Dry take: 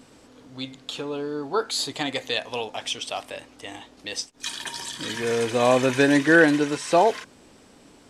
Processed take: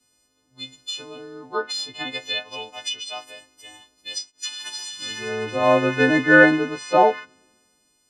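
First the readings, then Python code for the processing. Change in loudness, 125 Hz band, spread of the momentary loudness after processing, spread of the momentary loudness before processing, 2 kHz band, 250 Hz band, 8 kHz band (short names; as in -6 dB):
+2.0 dB, +0.5 dB, 20 LU, 19 LU, +4.5 dB, +0.5 dB, -1.5 dB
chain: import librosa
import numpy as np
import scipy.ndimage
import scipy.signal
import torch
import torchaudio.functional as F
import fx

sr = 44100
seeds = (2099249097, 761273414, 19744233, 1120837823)

y = fx.freq_snap(x, sr, grid_st=3)
y = fx.env_lowpass_down(y, sr, base_hz=2800.0, full_db=-18.5)
y = fx.band_widen(y, sr, depth_pct=70)
y = y * librosa.db_to_amplitude(-3.0)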